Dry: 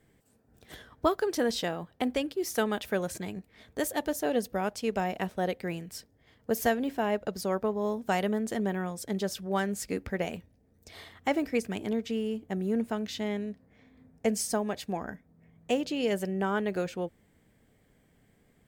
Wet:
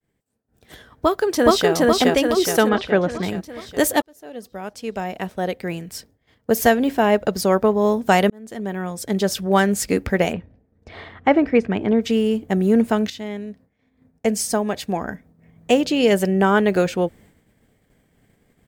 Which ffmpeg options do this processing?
-filter_complex "[0:a]asplit=2[a][b];[b]afade=t=in:st=0.91:d=0.01,afade=t=out:st=1.72:d=0.01,aecho=0:1:420|840|1260|1680|2100|2520|2940|3360:0.944061|0.519233|0.285578|0.157068|0.0863875|0.0475131|0.0261322|0.0143727[c];[a][c]amix=inputs=2:normalize=0,asettb=1/sr,asplit=3[d][e][f];[d]atrim=end=2.694[g];[e]atrim=start=2.69:end=3.23,asetpts=PTS-STARTPTS,afade=t=in:d=0.004:c=qsin,afade=t=out:st=0.536:d=0.004:c=qsin,lowpass=3.1k[h];[f]atrim=start=3.226[i];[g][h]acrossfade=d=0.004:c1=hsin:c2=qsin[j];[j][i]acrossfade=d=0.004:c1=qsin:c2=hsin,asplit=3[k][l][m];[k]afade=t=out:st=10.32:d=0.02[n];[l]lowpass=2.2k,afade=t=in:st=10.32:d=0.02,afade=t=out:st=12:d=0.02[o];[m]afade=t=in:st=12:d=0.02[p];[n][o][p]amix=inputs=3:normalize=0,asplit=4[q][r][s][t];[q]atrim=end=4.02,asetpts=PTS-STARTPTS,afade=t=out:st=4.016:d=0.004:c=hsin[u];[r]atrim=start=4.02:end=8.3,asetpts=PTS-STARTPTS,afade=t=in:d=3.16,afade=t=out:st=4.276:d=0.004:c=hsin[v];[s]atrim=start=8.3:end=13.1,asetpts=PTS-STARTPTS,afade=t=in:d=1.13,afade=t=out:st=4.796:d=0.004:c=hsin:silence=0.251189[w];[t]atrim=start=13.1,asetpts=PTS-STARTPTS,afade=t=in:d=3.25:silence=0.251189[x];[u][v][w][x]concat=n=4:v=0:a=1,agate=range=-33dB:threshold=-57dB:ratio=3:detection=peak,dynaudnorm=f=200:g=11:m=11.5dB,volume=1.5dB"

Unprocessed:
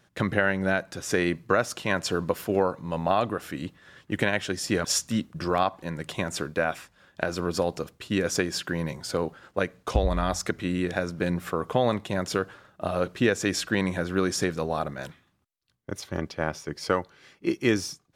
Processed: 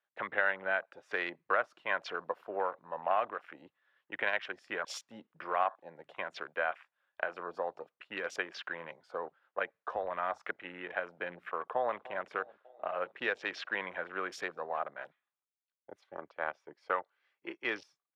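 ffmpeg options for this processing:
-filter_complex "[0:a]asplit=2[a][b];[b]afade=t=in:st=11.56:d=0.01,afade=t=out:st=12.1:d=0.01,aecho=0:1:300|600|900|1200|1500|1800|2100|2400:0.125893|0.0881248|0.0616873|0.0431811|0.0302268|0.0211588|0.0148111|0.0103678[c];[a][c]amix=inputs=2:normalize=0,highpass=150,afwtdn=0.0141,acrossover=split=560 3500:gain=0.0631 1 0.0891[d][e][f];[d][e][f]amix=inputs=3:normalize=0,volume=-3.5dB"

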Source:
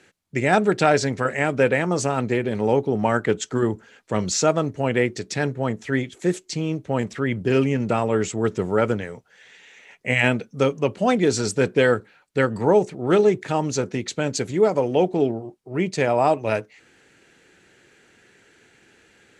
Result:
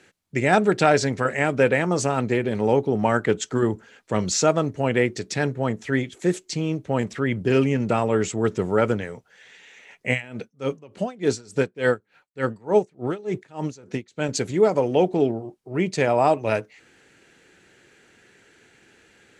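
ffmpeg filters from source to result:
-filter_complex "[0:a]asettb=1/sr,asplit=3[a][b][c];[a]atrim=end=10.124[d];[b]atrim=start=10.12:end=14.29,asetpts=PTS-STARTPTS,afade=t=in:d=0.004:c=qsin,afade=t=out:st=4.166:d=0.004:c=qsin,aeval=exprs='val(0)*pow(10,-25*(0.5-0.5*cos(2*PI*3.4*n/s))/20)':c=same[e];[c]atrim=start=14.286[f];[d][e]acrossfade=d=0.004:c1=hsin:c2=qsin[g];[g][f]acrossfade=d=0.004:c1=qsin:c2=hsin"

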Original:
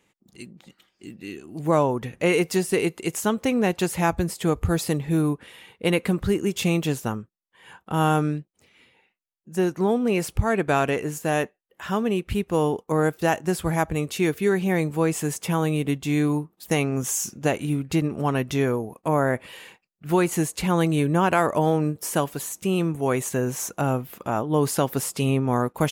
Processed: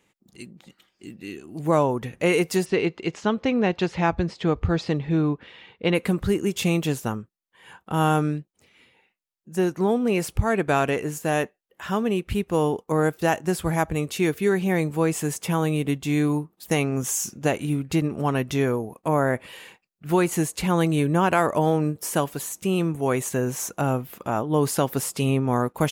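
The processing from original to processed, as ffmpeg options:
-filter_complex "[0:a]asplit=3[a][b][c];[a]afade=t=out:st=2.64:d=0.02[d];[b]lowpass=f=4.9k:w=0.5412,lowpass=f=4.9k:w=1.3066,afade=t=in:st=2.64:d=0.02,afade=t=out:st=5.94:d=0.02[e];[c]afade=t=in:st=5.94:d=0.02[f];[d][e][f]amix=inputs=3:normalize=0"

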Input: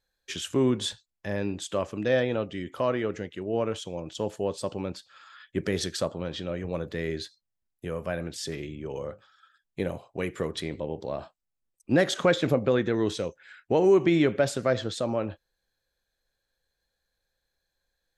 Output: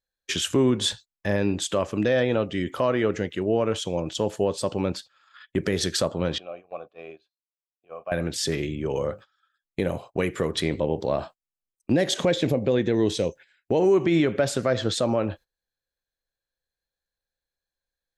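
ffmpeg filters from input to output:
-filter_complex "[0:a]asettb=1/sr,asplit=3[a][b][c];[a]atrim=end=6.384[d];[b]atrim=start=6.38:end=8.12,asetpts=PTS-STARTPTS,afade=t=in:d=0.004:c=qsin,afade=t=out:st=1.736:d=0.004:c=qsin,asplit=3[e][f][g];[e]bandpass=f=730:t=q:w=8,volume=0dB[h];[f]bandpass=f=1.09k:t=q:w=8,volume=-6dB[i];[g]bandpass=f=2.44k:t=q:w=8,volume=-9dB[j];[h][i][j]amix=inputs=3:normalize=0[k];[c]atrim=start=8.116[l];[d][k]acrossfade=d=0.004:c1=hsin:c2=qsin[m];[m][l]acrossfade=d=0.004:c1=qsin:c2=hsin,asettb=1/sr,asplit=3[n][o][p];[n]atrim=end=11.934[q];[o]atrim=start=11.93:end=13.8,asetpts=PTS-STARTPTS,afade=t=in:d=0.004:c=qsin,afade=t=out:st=1.866:d=0.004:c=qsin,equalizer=f=1.3k:w=2.2:g=-11.5[r];[p]atrim=start=13.796[s];[q][r]acrossfade=d=0.004:c1=hsin:c2=qsin[t];[t][s]acrossfade=d=0.004:c1=qsin:c2=hsin,agate=range=-18dB:threshold=-48dB:ratio=16:detection=peak,alimiter=limit=-20dB:level=0:latency=1:release=228,volume=8dB"

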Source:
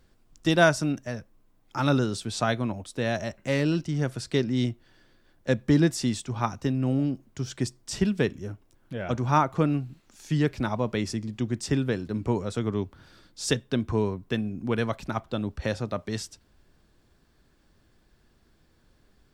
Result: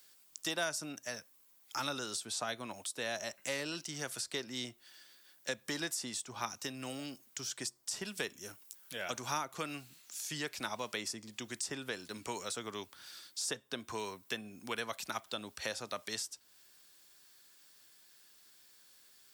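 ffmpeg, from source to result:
-filter_complex "[0:a]asettb=1/sr,asplit=3[a][b][c];[a]atrim=end=8.064[d];[b]atrim=start=8.06:end=9.45,asetpts=PTS-STARTPTS,afade=t=in:d=0.004:c=qsin,afade=t=out:st=1.386:d=0.004:c=qsin,highshelf=f=5k:g=5.5[e];[c]atrim=start=9.446[f];[d][e]acrossfade=d=0.004:c1=hsin:c2=qsin[g];[g][f]acrossfade=d=0.004:c1=qsin:c2=hsin,aderivative,acrossover=split=540|1300[h][i][j];[h]acompressor=threshold=-55dB:ratio=4[k];[i]acompressor=threshold=-54dB:ratio=4[l];[j]acompressor=threshold=-53dB:ratio=4[m];[k][l][m]amix=inputs=3:normalize=0,volume=13dB"

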